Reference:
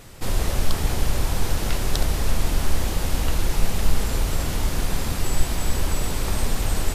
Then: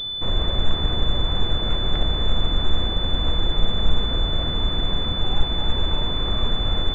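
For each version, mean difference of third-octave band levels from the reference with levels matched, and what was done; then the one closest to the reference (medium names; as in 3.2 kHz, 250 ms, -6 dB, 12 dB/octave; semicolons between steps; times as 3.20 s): 12.5 dB: band-stop 860 Hz, Q 12; class-D stage that switches slowly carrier 3.5 kHz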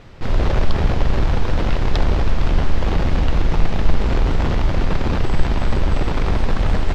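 8.0 dB: in parallel at -7 dB: Schmitt trigger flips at -29.5 dBFS; on the sum: distance through air 210 m; trim +3 dB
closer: second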